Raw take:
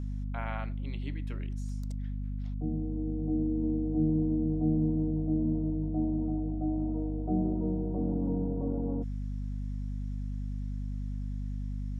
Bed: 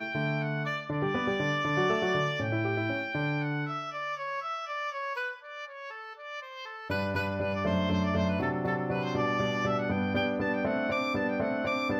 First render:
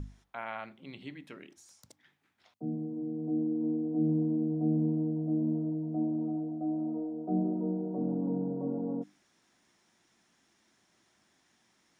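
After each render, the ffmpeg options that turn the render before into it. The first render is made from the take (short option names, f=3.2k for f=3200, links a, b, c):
-af "bandreject=f=50:t=h:w=6,bandreject=f=100:t=h:w=6,bandreject=f=150:t=h:w=6,bandreject=f=200:t=h:w=6,bandreject=f=250:t=h:w=6,bandreject=f=300:t=h:w=6"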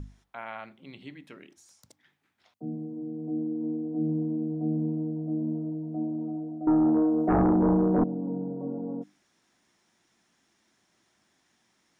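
-filter_complex "[0:a]asettb=1/sr,asplit=3[a][b][c];[a]atrim=end=6.674[d];[b]atrim=start=6.67:end=8.04,asetpts=PTS-STARTPTS,afade=t=in:d=0.004:c=qsin,afade=t=out:st=1.366:d=0.004:c=qsin,aeval=exprs='0.126*sin(PI/2*3.16*val(0)/0.126)':c=same[e];[c]atrim=start=8.036[f];[d][e]acrossfade=d=0.004:c1=hsin:c2=qsin[g];[g][f]acrossfade=d=0.004:c1=qsin:c2=hsin"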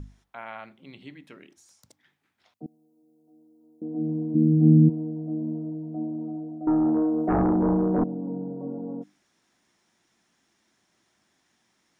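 -filter_complex "[0:a]asettb=1/sr,asplit=3[a][b][c];[a]atrim=end=2.664[d];[b]atrim=start=2.66:end=3.82,asetpts=PTS-STARTPTS,afade=t=in:d=0.004:c=qsin,afade=t=out:st=1.156:d=0.004:c=qsin,aderivative[e];[c]atrim=start=3.816[f];[d][e]acrossfade=d=0.004:c1=hsin:c2=qsin[g];[g][f]acrossfade=d=0.004:c1=qsin:c2=hsin,asplit=3[h][i][j];[h]afade=t=out:st=4.34:d=0.02[k];[i]asubboost=boost=10.5:cutoff=240,afade=t=in:st=4.34:d=0.02,afade=t=out:st=4.88:d=0.02[l];[j]afade=t=in:st=4.88:d=0.02[m];[k][l][m]amix=inputs=3:normalize=0"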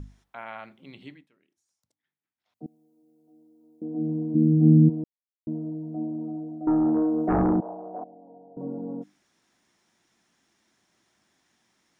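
-filter_complex "[0:a]asettb=1/sr,asplit=3[a][b][c];[a]atrim=end=7.604[d];[b]atrim=start=7.6:end=8.57,asetpts=PTS-STARTPTS,afade=t=in:d=0.004:c=qsin,afade=t=out:st=0.966:d=0.004:c=qsin,bandpass=f=700:t=q:w=5.6[e];[c]atrim=start=8.566[f];[d][e]acrossfade=d=0.004:c1=hsin:c2=qsin[g];[g][f]acrossfade=d=0.004:c1=qsin:c2=hsin,asplit=5[h][i][j][k][l];[h]atrim=end=1.28,asetpts=PTS-STARTPTS,afade=t=out:st=1.08:d=0.2:silence=0.0891251[m];[i]atrim=start=1.28:end=2.45,asetpts=PTS-STARTPTS,volume=-21dB[n];[j]atrim=start=2.45:end=5.04,asetpts=PTS-STARTPTS,afade=t=in:d=0.2:silence=0.0891251,afade=t=out:st=2.586:d=0.004:c=hsin[o];[k]atrim=start=5.04:end=5.47,asetpts=PTS-STARTPTS,volume=0[p];[l]atrim=start=5.47,asetpts=PTS-STARTPTS,afade=t=in:d=0.004:c=hsin[q];[m][n][o][p][q]concat=n=5:v=0:a=1"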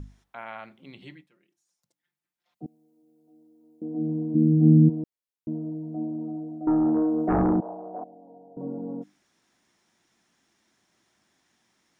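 -filter_complex "[0:a]asettb=1/sr,asplit=3[a][b][c];[a]atrim=end=1.024[d];[b]atrim=start=1.02:end=2.65,asetpts=PTS-STARTPTS,afade=t=in:d=0.004:c=qsin,afade=t=out:st=1.626:d=0.004:c=qsin,aecho=1:1:5.7:0.73,atrim=end_sample=71883[e];[c]atrim=start=2.646[f];[d][e]acrossfade=d=0.004:c1=hsin:c2=qsin[g];[g][f]acrossfade=d=0.004:c1=qsin:c2=hsin"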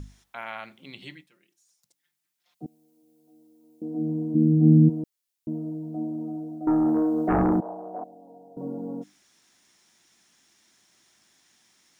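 -af "highshelf=f=2.3k:g=11.5"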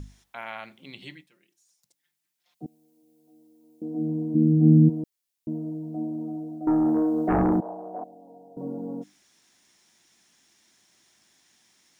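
-af "equalizer=f=1.3k:t=o:w=0.41:g=-2.5"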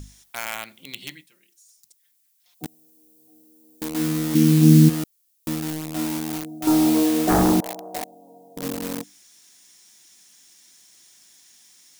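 -filter_complex "[0:a]asplit=2[a][b];[b]acrusher=bits=4:mix=0:aa=0.000001,volume=-6dB[c];[a][c]amix=inputs=2:normalize=0,crystalizer=i=3.5:c=0"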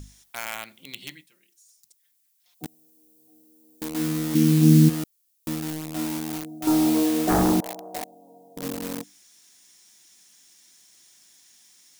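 -af "volume=-2.5dB"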